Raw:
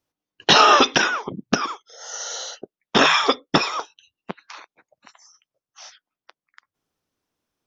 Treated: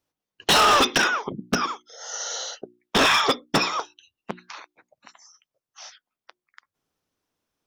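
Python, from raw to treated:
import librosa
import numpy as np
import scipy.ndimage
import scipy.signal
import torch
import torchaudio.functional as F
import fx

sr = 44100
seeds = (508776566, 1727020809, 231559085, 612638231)

y = fx.hum_notches(x, sr, base_hz=60, count=6)
y = np.clip(y, -10.0 ** (-14.0 / 20.0), 10.0 ** (-14.0 / 20.0))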